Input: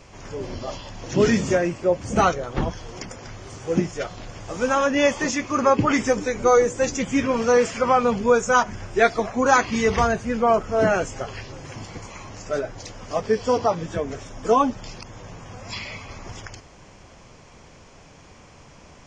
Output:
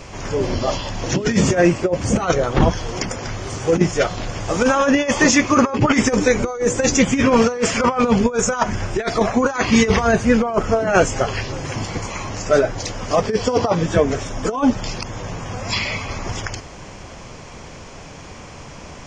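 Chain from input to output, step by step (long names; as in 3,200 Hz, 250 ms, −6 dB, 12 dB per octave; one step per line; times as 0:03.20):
compressor whose output falls as the input rises −22 dBFS, ratio −0.5
level +7.5 dB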